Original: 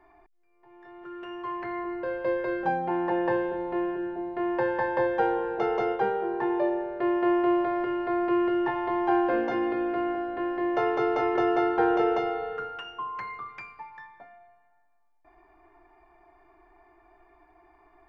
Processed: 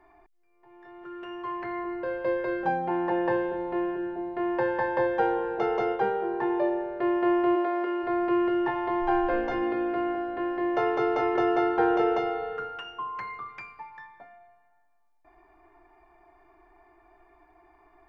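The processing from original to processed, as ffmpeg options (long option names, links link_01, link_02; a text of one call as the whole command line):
ffmpeg -i in.wav -filter_complex "[0:a]asplit=3[link_01][link_02][link_03];[link_01]afade=type=out:start_time=7.55:duration=0.02[link_04];[link_02]highpass=frequency=250:width=0.5412,highpass=frequency=250:width=1.3066,afade=type=in:start_time=7.55:duration=0.02,afade=type=out:start_time=8.02:duration=0.02[link_05];[link_03]afade=type=in:start_time=8.02:duration=0.02[link_06];[link_04][link_05][link_06]amix=inputs=3:normalize=0,asplit=3[link_07][link_08][link_09];[link_07]afade=type=out:start_time=9:duration=0.02[link_10];[link_08]asubboost=boost=11:cutoff=53,afade=type=in:start_time=9:duration=0.02,afade=type=out:start_time=9.61:duration=0.02[link_11];[link_09]afade=type=in:start_time=9.61:duration=0.02[link_12];[link_10][link_11][link_12]amix=inputs=3:normalize=0" out.wav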